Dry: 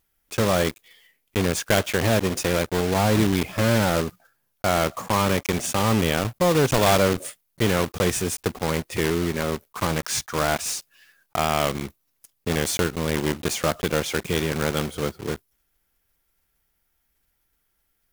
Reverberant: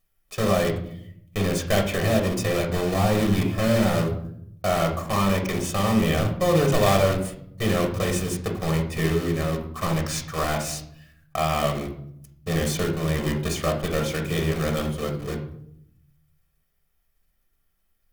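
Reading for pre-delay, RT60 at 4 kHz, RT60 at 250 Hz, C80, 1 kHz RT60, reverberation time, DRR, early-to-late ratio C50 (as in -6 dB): 3 ms, 0.45 s, 1.2 s, 11.5 dB, 0.60 s, 0.70 s, 2.0 dB, 8.0 dB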